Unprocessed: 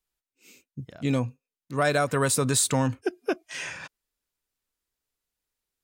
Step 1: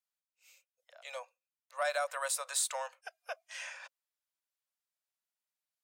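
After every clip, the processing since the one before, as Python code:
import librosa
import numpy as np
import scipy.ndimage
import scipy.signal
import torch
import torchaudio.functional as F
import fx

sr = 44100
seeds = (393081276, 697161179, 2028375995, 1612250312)

y = scipy.signal.sosfilt(scipy.signal.butter(16, 530.0, 'highpass', fs=sr, output='sos'), x)
y = F.gain(torch.from_numpy(y), -8.5).numpy()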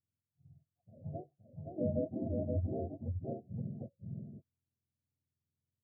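y = fx.octave_mirror(x, sr, pivot_hz=600.0)
y = y + 10.0 ** (-3.5 / 20.0) * np.pad(y, (int(521 * sr / 1000.0), 0))[:len(y)]
y = F.gain(torch.from_numpy(y), -1.0).numpy()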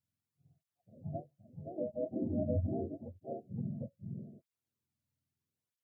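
y = fx.flanger_cancel(x, sr, hz=0.78, depth_ms=2.8)
y = F.gain(torch.from_numpy(y), 4.0).numpy()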